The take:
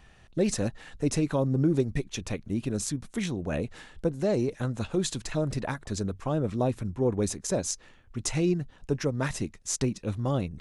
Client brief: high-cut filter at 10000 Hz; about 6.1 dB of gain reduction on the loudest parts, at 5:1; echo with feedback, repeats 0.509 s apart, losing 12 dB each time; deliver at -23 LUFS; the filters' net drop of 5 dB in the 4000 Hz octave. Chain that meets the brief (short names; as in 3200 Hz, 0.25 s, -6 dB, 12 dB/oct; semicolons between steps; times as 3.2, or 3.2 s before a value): LPF 10000 Hz; bell 4000 Hz -6.5 dB; compressor 5:1, threshold -27 dBFS; feedback echo 0.509 s, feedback 25%, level -12 dB; gain +10.5 dB